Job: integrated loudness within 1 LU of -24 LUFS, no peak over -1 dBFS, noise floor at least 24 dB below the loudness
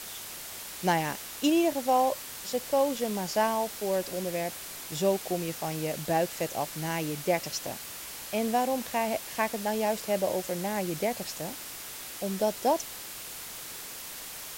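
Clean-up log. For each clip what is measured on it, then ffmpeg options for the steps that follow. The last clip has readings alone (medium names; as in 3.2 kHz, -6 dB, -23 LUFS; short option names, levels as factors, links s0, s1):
noise floor -42 dBFS; noise floor target -55 dBFS; loudness -30.5 LUFS; peak level -11.5 dBFS; loudness target -24.0 LUFS
-> -af "afftdn=nr=13:nf=-42"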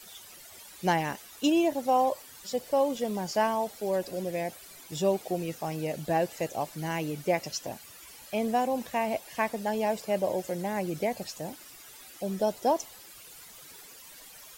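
noise floor -50 dBFS; noise floor target -54 dBFS
-> -af "afftdn=nr=6:nf=-50"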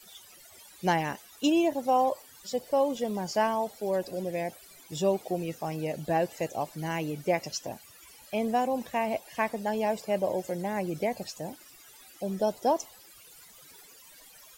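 noise floor -53 dBFS; noise floor target -54 dBFS
-> -af "afftdn=nr=6:nf=-53"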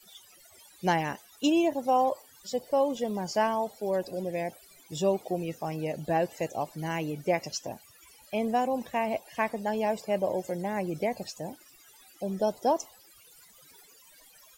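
noise floor -57 dBFS; loudness -30.0 LUFS; peak level -12.0 dBFS; loudness target -24.0 LUFS
-> -af "volume=2"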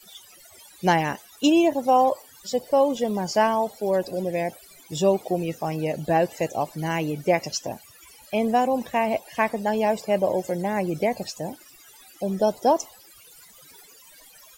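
loudness -24.0 LUFS; peak level -6.0 dBFS; noise floor -51 dBFS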